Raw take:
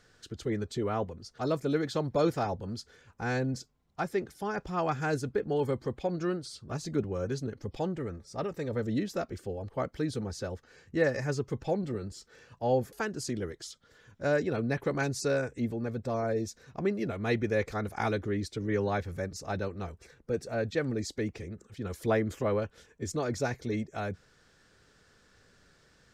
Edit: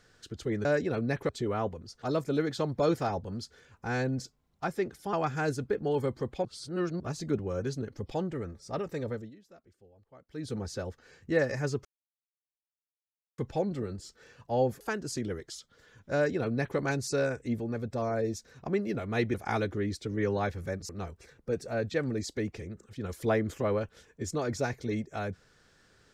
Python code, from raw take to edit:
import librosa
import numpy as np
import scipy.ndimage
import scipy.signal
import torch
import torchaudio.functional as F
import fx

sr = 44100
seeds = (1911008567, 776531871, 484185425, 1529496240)

y = fx.edit(x, sr, fx.cut(start_s=4.49, length_s=0.29),
    fx.reverse_span(start_s=6.1, length_s=0.55),
    fx.fade_down_up(start_s=8.68, length_s=1.53, db=-22.5, fade_s=0.28),
    fx.insert_silence(at_s=11.5, length_s=1.53),
    fx.duplicate(start_s=14.26, length_s=0.64, to_s=0.65),
    fx.cut(start_s=17.46, length_s=0.39),
    fx.cut(start_s=19.4, length_s=0.3), tone=tone)